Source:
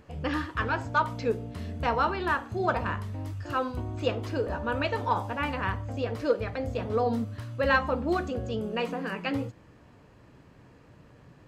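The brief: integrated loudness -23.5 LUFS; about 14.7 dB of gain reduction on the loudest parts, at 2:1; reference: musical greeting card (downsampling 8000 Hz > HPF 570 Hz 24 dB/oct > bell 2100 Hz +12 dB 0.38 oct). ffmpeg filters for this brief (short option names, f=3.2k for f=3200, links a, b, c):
-af "acompressor=threshold=-47dB:ratio=2,aresample=8000,aresample=44100,highpass=f=570:w=0.5412,highpass=f=570:w=1.3066,equalizer=f=2.1k:t=o:w=0.38:g=12,volume=19dB"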